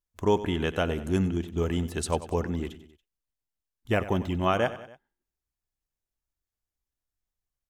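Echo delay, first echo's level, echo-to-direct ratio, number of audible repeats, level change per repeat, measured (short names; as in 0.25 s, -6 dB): 94 ms, -15.0 dB, -13.5 dB, 3, -5.0 dB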